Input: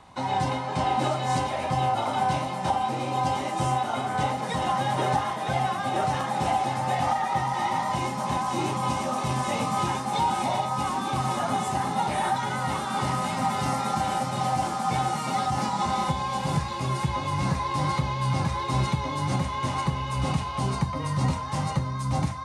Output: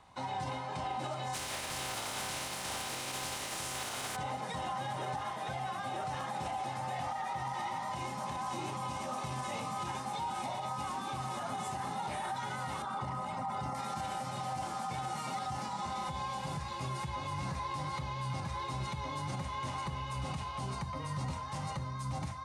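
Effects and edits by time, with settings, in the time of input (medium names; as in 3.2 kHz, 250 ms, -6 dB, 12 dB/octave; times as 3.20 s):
1.33–4.15 s: spectral contrast reduction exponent 0.36
12.82–13.75 s: resonances exaggerated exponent 1.5
whole clip: peaking EQ 250 Hz -4 dB 1.9 oct; peak limiter -21.5 dBFS; trim -7.5 dB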